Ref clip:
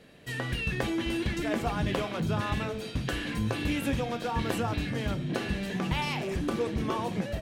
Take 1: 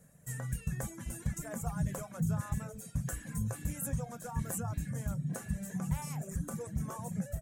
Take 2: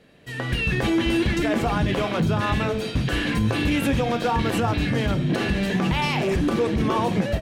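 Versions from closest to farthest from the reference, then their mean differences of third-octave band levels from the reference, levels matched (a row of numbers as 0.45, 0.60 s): 2, 1; 2.0, 9.5 dB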